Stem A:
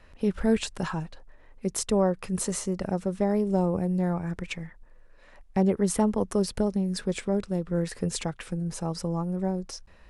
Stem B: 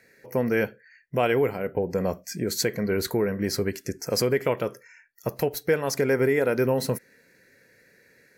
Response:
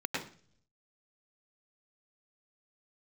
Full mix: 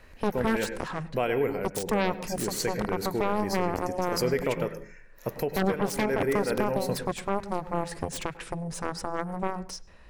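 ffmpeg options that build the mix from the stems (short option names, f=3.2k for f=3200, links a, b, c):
-filter_complex "[0:a]aeval=exprs='0.282*(cos(1*acos(clip(val(0)/0.282,-1,1)))-cos(1*PI/2))+0.0501*(cos(5*acos(clip(val(0)/0.282,-1,1)))-cos(5*PI/2))+0.112*(cos(7*acos(clip(val(0)/0.282,-1,1)))-cos(7*PI/2))':c=same,volume=2dB,asplit=2[a][b];[b]volume=-24dB[c];[1:a]volume=-5dB,asplit=2[d][e];[e]volume=-14dB[f];[2:a]atrim=start_sample=2205[g];[c][f]amix=inputs=2:normalize=0[h];[h][g]afir=irnorm=-1:irlink=0[i];[a][d][i]amix=inputs=3:normalize=0,alimiter=limit=-15dB:level=0:latency=1:release=143"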